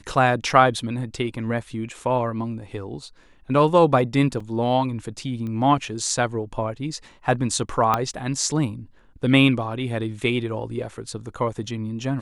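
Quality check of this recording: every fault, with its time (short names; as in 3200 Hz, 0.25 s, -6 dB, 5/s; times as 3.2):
4.4 gap 4.2 ms
5.47 pop -23 dBFS
7.94 pop -7 dBFS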